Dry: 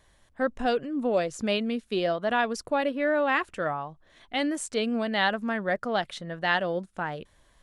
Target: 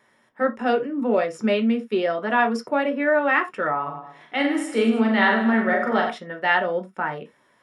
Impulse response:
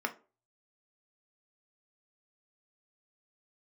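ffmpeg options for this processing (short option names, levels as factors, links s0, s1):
-filter_complex "[0:a]asettb=1/sr,asplit=3[s0][s1][s2];[s0]atrim=end=3.714[s3];[s1]atrim=start=3.71:end=6.1,asetpts=PTS-STARTPTS,afade=t=in:d=0.004:c=qsin,afade=t=out:st=2.386:d=0.004:c=qsin,aecho=1:1:40|90|152.5|230.6|328.3:0.631|0.398|0.251|0.158|0.1,atrim=end_sample=105399[s4];[s2]atrim=start=6.096[s5];[s3][s4]acrossfade=d=0.004:c1=hsin:c2=qsin[s6];[s6][s5]acrossfade=d=0.004:c1=qsin:c2=hsin[s7];[1:a]atrim=start_sample=2205,atrim=end_sample=3969[s8];[s7][s8]afir=irnorm=-1:irlink=0"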